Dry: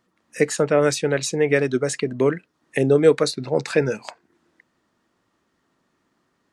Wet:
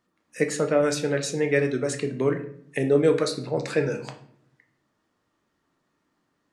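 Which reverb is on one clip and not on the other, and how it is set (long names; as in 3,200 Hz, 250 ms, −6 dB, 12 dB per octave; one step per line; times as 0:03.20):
rectangular room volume 98 cubic metres, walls mixed, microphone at 0.44 metres
level −5.5 dB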